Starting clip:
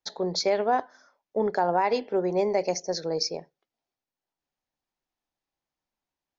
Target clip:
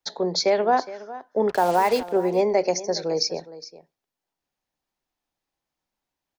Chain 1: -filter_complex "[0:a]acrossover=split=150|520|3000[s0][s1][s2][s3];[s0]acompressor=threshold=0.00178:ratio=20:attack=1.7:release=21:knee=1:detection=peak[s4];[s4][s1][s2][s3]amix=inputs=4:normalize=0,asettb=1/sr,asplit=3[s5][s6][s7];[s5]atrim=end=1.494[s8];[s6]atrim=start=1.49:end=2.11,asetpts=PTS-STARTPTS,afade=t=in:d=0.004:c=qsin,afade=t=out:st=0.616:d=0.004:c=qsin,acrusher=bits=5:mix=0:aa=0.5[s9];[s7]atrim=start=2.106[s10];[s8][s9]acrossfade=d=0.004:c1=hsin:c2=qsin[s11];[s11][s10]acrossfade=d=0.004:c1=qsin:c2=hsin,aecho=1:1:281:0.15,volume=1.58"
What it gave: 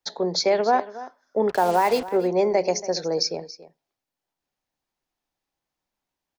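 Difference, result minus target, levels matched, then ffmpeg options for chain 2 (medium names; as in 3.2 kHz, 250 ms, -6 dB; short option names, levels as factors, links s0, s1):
echo 133 ms early
-filter_complex "[0:a]acrossover=split=150|520|3000[s0][s1][s2][s3];[s0]acompressor=threshold=0.00178:ratio=20:attack=1.7:release=21:knee=1:detection=peak[s4];[s4][s1][s2][s3]amix=inputs=4:normalize=0,asettb=1/sr,asplit=3[s5][s6][s7];[s5]atrim=end=1.494[s8];[s6]atrim=start=1.49:end=2.11,asetpts=PTS-STARTPTS,afade=t=in:d=0.004:c=qsin,afade=t=out:st=0.616:d=0.004:c=qsin,acrusher=bits=5:mix=0:aa=0.5[s9];[s7]atrim=start=2.106[s10];[s8][s9]acrossfade=d=0.004:c1=hsin:c2=qsin[s11];[s11][s10]acrossfade=d=0.004:c1=qsin:c2=hsin,aecho=1:1:414:0.15,volume=1.58"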